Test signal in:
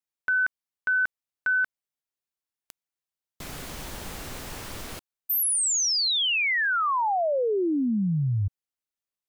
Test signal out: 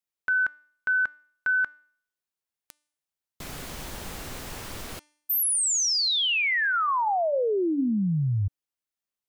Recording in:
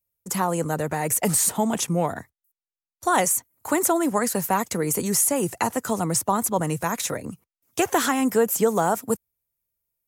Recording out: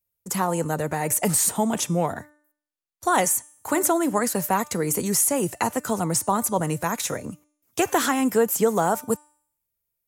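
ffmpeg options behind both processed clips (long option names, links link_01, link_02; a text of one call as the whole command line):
ffmpeg -i in.wav -af "bandreject=frequency=297.8:width_type=h:width=4,bandreject=frequency=595.6:width_type=h:width=4,bandreject=frequency=893.4:width_type=h:width=4,bandreject=frequency=1191.2:width_type=h:width=4,bandreject=frequency=1489:width_type=h:width=4,bandreject=frequency=1786.8:width_type=h:width=4,bandreject=frequency=2084.6:width_type=h:width=4,bandreject=frequency=2382.4:width_type=h:width=4,bandreject=frequency=2680.2:width_type=h:width=4,bandreject=frequency=2978:width_type=h:width=4,bandreject=frequency=3275.8:width_type=h:width=4,bandreject=frequency=3573.6:width_type=h:width=4,bandreject=frequency=3871.4:width_type=h:width=4,bandreject=frequency=4169.2:width_type=h:width=4,bandreject=frequency=4467:width_type=h:width=4,bandreject=frequency=4764.8:width_type=h:width=4,bandreject=frequency=5062.6:width_type=h:width=4,bandreject=frequency=5360.4:width_type=h:width=4,bandreject=frequency=5658.2:width_type=h:width=4,bandreject=frequency=5956:width_type=h:width=4,bandreject=frequency=6253.8:width_type=h:width=4,bandreject=frequency=6551.6:width_type=h:width=4,bandreject=frequency=6849.4:width_type=h:width=4,bandreject=frequency=7147.2:width_type=h:width=4,bandreject=frequency=7445:width_type=h:width=4,bandreject=frequency=7742.8:width_type=h:width=4,bandreject=frequency=8040.6:width_type=h:width=4,bandreject=frequency=8338.4:width_type=h:width=4,bandreject=frequency=8636.2:width_type=h:width=4,bandreject=frequency=8934:width_type=h:width=4,bandreject=frequency=9231.8:width_type=h:width=4,bandreject=frequency=9529.6:width_type=h:width=4,bandreject=frequency=9827.4:width_type=h:width=4,bandreject=frequency=10125.2:width_type=h:width=4,bandreject=frequency=10423:width_type=h:width=4,bandreject=frequency=10720.8:width_type=h:width=4,bandreject=frequency=11018.6:width_type=h:width=4" out.wav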